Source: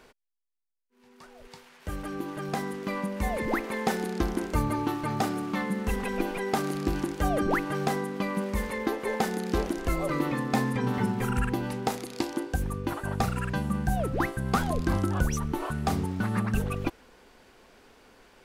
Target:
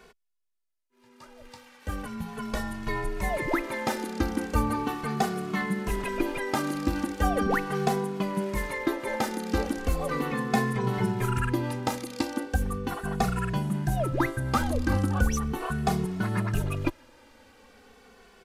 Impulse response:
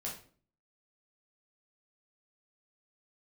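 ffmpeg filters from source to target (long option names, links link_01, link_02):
-filter_complex "[0:a]aresample=32000,aresample=44100,asettb=1/sr,asplit=3[link_01][link_02][link_03];[link_01]atrim=end=2.054[link_04];[link_02]atrim=start=2.05:end=3.21,asetpts=PTS-STARTPTS,afade=type=in:duration=0.004:curve=qsin,afade=type=out:start_time=1.156:duration=0.004:curve=qsin,afreqshift=-170[link_05];[link_03]atrim=start=3.206[link_06];[link_04][link_05]acrossfade=duration=0.004:curve1=hsin:curve2=qsin[link_07];[link_07][link_06]acrossfade=duration=0.004:curve1=qsin:curve2=hsin,asplit=2[link_08][link_09];[link_09]adelay=2.3,afreqshift=-0.38[link_10];[link_08][link_10]amix=inputs=2:normalize=1,volume=4dB"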